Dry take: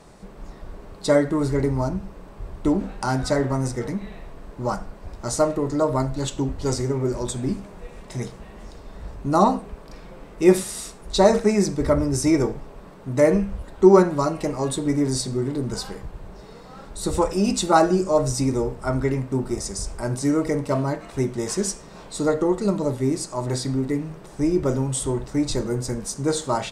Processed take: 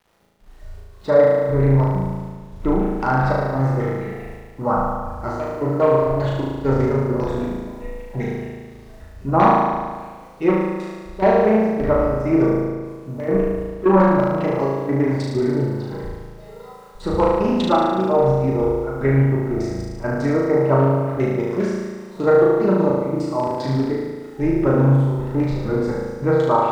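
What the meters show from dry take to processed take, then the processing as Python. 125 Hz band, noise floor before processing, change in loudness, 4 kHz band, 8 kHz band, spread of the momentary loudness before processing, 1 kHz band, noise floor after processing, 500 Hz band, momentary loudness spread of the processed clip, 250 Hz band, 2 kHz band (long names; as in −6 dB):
+6.0 dB, −43 dBFS, +3.5 dB, −6.0 dB, below −15 dB, 20 LU, +5.0 dB, −41 dBFS, +4.0 dB, 15 LU, +2.0 dB, +4.0 dB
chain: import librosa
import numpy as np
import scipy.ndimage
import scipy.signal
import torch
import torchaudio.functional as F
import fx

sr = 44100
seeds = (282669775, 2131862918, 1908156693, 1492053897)

y = fx.hum_notches(x, sr, base_hz=50, count=7)
y = fx.noise_reduce_blind(y, sr, reduce_db=14)
y = fx.rider(y, sr, range_db=3, speed_s=2.0)
y = np.clip(y, -10.0 ** (-10.5 / 20.0), 10.0 ** (-10.5 / 20.0))
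y = fx.filter_lfo_lowpass(y, sr, shape='saw_down', hz=5.0, low_hz=760.0, high_hz=2900.0, q=1.3)
y = fx.step_gate(y, sr, bpm=131, pattern='xx..xxx.x', floor_db=-12.0, edge_ms=4.5)
y = fx.quant_dither(y, sr, seeds[0], bits=10, dither='none')
y = fx.room_flutter(y, sr, wall_m=6.3, rt60_s=1.5)
y = fx.doppler_dist(y, sr, depth_ms=0.2)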